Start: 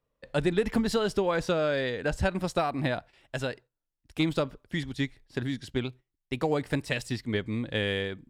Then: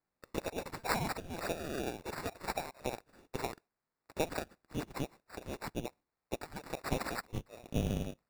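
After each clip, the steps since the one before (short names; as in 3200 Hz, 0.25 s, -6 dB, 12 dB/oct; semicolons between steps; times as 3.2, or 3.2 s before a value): steep high-pass 2700 Hz 96 dB/oct; sample-and-hold 14×; gain +5.5 dB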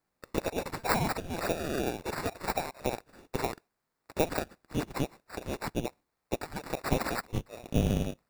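de-esser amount 75%; gain +6.5 dB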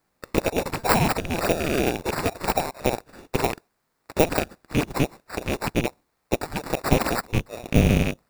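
rattling part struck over -37 dBFS, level -23 dBFS; dynamic EQ 2400 Hz, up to -4 dB, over -45 dBFS, Q 0.74; gain +9 dB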